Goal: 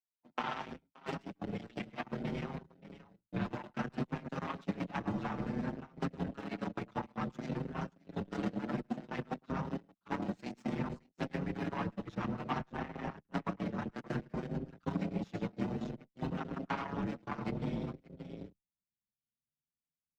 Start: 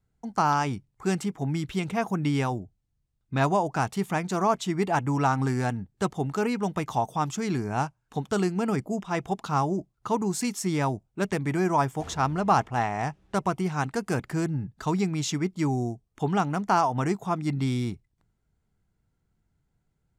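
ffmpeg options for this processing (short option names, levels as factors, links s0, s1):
-filter_complex "[0:a]acrossover=split=270|480|1900[s0][s1][s2][s3];[s1]acrusher=samples=39:mix=1:aa=0.000001[s4];[s0][s4][s2][s3]amix=inputs=4:normalize=0,asubboost=boost=8:cutoff=150,afftfilt=real='hypot(re,im)*cos(2*PI*random(0))':imag='hypot(re,im)*sin(2*PI*random(1))':win_size=512:overlap=0.75,aecho=1:1:106|574:0.2|0.299,aeval=exprs='0.282*(cos(1*acos(clip(val(0)/0.282,-1,1)))-cos(1*PI/2))+0.0398*(cos(7*acos(clip(val(0)/0.282,-1,1)))-cos(7*PI/2))':c=same,acompressor=threshold=0.0126:ratio=4,acrossover=split=150 4700:gain=0.178 1 0.0794[s5][s6][s7];[s5][s6][s7]amix=inputs=3:normalize=0,asplit=2[s8][s9];[s9]adelay=6.5,afreqshift=0.58[s10];[s8][s10]amix=inputs=2:normalize=1,volume=2.82"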